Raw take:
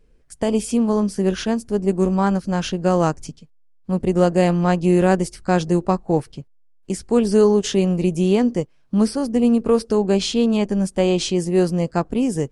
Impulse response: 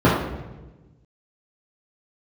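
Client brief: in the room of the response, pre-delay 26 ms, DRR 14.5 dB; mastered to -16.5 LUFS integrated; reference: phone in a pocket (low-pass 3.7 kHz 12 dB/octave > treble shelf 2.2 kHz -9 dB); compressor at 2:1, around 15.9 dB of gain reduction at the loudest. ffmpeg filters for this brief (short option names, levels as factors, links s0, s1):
-filter_complex "[0:a]acompressor=threshold=0.00794:ratio=2,asplit=2[s0][s1];[1:a]atrim=start_sample=2205,adelay=26[s2];[s1][s2]afir=irnorm=-1:irlink=0,volume=0.0119[s3];[s0][s3]amix=inputs=2:normalize=0,lowpass=3700,highshelf=f=2200:g=-9,volume=7.08"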